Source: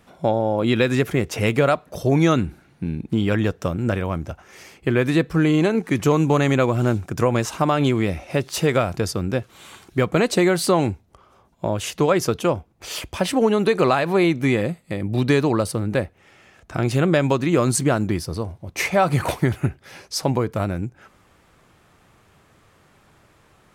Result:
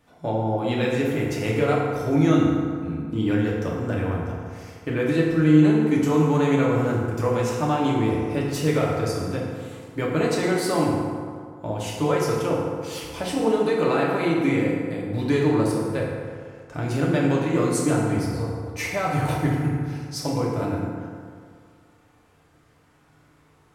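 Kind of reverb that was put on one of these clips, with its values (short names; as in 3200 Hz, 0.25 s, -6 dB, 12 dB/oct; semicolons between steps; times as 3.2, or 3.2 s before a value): FDN reverb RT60 2.1 s, low-frequency decay 0.9×, high-frequency decay 0.5×, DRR -4.5 dB; gain -9.5 dB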